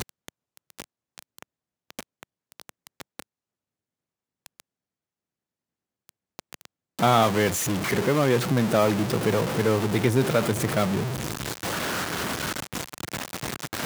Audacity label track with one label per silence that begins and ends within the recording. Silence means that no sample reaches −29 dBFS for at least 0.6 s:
3.220000	4.460000	silence
4.600000	6.090000	silence